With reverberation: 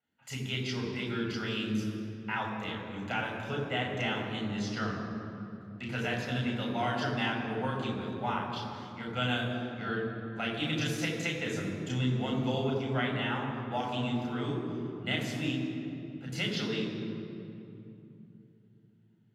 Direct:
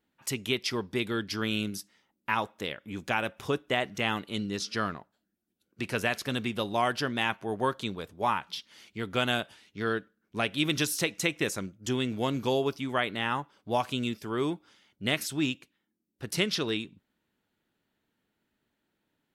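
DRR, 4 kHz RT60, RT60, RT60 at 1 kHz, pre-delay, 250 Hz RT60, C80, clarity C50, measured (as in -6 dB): -1.5 dB, 1.7 s, 2.9 s, 2.6 s, 3 ms, 4.4 s, 4.0 dB, 3.0 dB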